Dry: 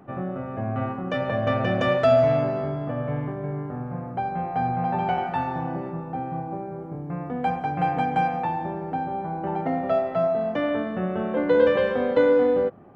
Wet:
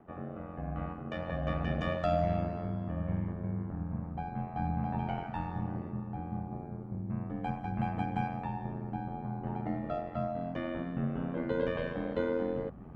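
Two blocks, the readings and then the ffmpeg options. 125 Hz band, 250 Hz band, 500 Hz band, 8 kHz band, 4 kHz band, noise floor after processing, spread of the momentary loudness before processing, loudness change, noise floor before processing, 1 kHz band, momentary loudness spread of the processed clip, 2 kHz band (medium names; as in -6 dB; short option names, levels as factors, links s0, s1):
-5.0 dB, -7.0 dB, -14.5 dB, no reading, -11.5 dB, -43 dBFS, 13 LU, -10.5 dB, -35 dBFS, -12.5 dB, 7 LU, -12.0 dB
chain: -af "asubboost=boost=5:cutoff=180,areverse,acompressor=mode=upward:threshold=0.0447:ratio=2.5,areverse,aeval=exprs='val(0)*sin(2*PI*43*n/s)':c=same,volume=0.376"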